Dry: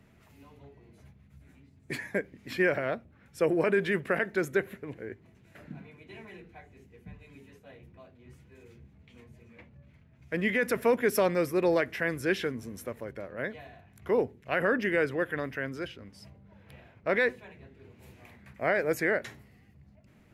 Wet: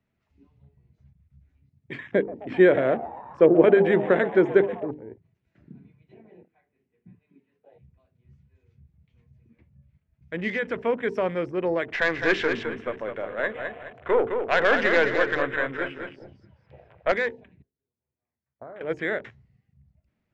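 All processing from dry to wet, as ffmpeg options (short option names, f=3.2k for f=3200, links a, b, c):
-filter_complex "[0:a]asettb=1/sr,asplit=3[a][b][c];[a]atrim=end=2.124[d];[b]atrim=start=2.12:end=4.91,asetpts=PTS-STARTPTS,afade=t=in:d=0.004:c=qsin,afade=t=out:st=2.786:d=0.004:c=qsin,equalizer=f=350:t=o:w=2.6:g=12,asplit=7[e][f][g][h][i][j][k];[f]adelay=130,afreqshift=110,volume=-17dB[l];[g]adelay=260,afreqshift=220,volume=-20.9dB[m];[h]adelay=390,afreqshift=330,volume=-24.8dB[n];[i]adelay=520,afreqshift=440,volume=-28.6dB[o];[j]adelay=650,afreqshift=550,volume=-32.5dB[p];[k]adelay=780,afreqshift=660,volume=-36.4dB[q];[e][l][m][n][o][p][q]amix=inputs=7:normalize=0,atrim=end_sample=123039[r];[c]atrim=start=4.906[s];[d][r]acrossfade=d=0.004:c1=hsin:c2=qsin[t];[t][s]acrossfade=d=0.004:c1=qsin:c2=hsin,asettb=1/sr,asplit=3[u][v][w];[u]atrim=end=6.144[x];[v]atrim=start=6.14:end=7.72,asetpts=PTS-STARTPTS,afade=t=in:d=0.004:c=qsin,afade=t=out:st=1.576:d=0.004:c=qsin,highpass=150,lowpass=2.9k,asplit=2[y][z];[z]adelay=38,volume=-14dB[aa];[y][aa]amix=inputs=2:normalize=0,atrim=end_sample=69678[ab];[w]atrim=start=7.716[ac];[x][ab]acrossfade=d=0.004:c1=hsin:c2=qsin[ad];[ad][ac]acrossfade=d=0.004:c1=qsin:c2=hsin,asettb=1/sr,asplit=3[ae][af][ag];[ae]atrim=end=11.884[ah];[af]atrim=start=11.88:end=17.12,asetpts=PTS-STARTPTS,afade=t=in:d=0.004:c=qsin,afade=t=out:st=5.236:d=0.004:c=qsin,equalizer=f=1.1k:w=0.33:g=12,aeval=exprs='(tanh(3.98*val(0)+0.4)-tanh(0.4))/3.98':c=same,aecho=1:1:211|422|633|844:0.473|0.17|0.0613|0.0221,atrim=end_sample=231084[ai];[ag]atrim=start=17.116[aj];[ah][ai]acrossfade=d=0.004:c1=hsin:c2=qsin[ak];[ak][aj]acrossfade=d=0.004:c1=qsin:c2=hsin,asettb=1/sr,asplit=3[al][am][an];[al]atrim=end=17.624[ao];[am]atrim=start=17.62:end=18.81,asetpts=PTS-STARTPTS,afade=t=in:d=0.004:c=qsin,afade=t=out:st=1.186:d=0.004:c=qsin,lowpass=1.5k,agate=range=-19dB:threshold=-43dB:ratio=16:release=100:detection=peak,acompressor=threshold=-36dB:ratio=16:attack=3.2:release=140:knee=1:detection=peak[ap];[an]atrim=start=18.806[aq];[ao][ap]acrossfade=d=0.004:c1=hsin:c2=qsin[ar];[ar][aq]acrossfade=d=0.004:c1=qsin:c2=hsin,lowpass=f=6.1k:w=0.5412,lowpass=f=6.1k:w=1.3066,bandreject=f=50:t=h:w=6,bandreject=f=100:t=h:w=6,bandreject=f=150:t=h:w=6,bandreject=f=200:t=h:w=6,bandreject=f=250:t=h:w=6,bandreject=f=300:t=h:w=6,bandreject=f=350:t=h:w=6,bandreject=f=400:t=h:w=6,bandreject=f=450:t=h:w=6,afwtdn=0.00891"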